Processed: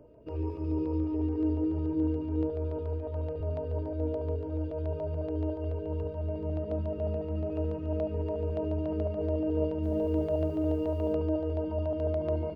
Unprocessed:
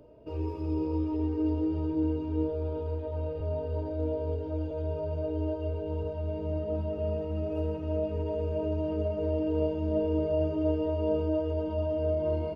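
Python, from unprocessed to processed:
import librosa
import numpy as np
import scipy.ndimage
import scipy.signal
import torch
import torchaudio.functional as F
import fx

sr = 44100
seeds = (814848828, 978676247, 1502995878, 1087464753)

y = fx.filter_lfo_notch(x, sr, shape='square', hz=7.0, low_hz=770.0, high_hz=3800.0, q=1.4)
y = fx.quant_dither(y, sr, seeds[0], bits=10, dither='none', at=(9.82, 11.13), fade=0.02)
y = fx.high_shelf(y, sr, hz=3200.0, db=-8.0)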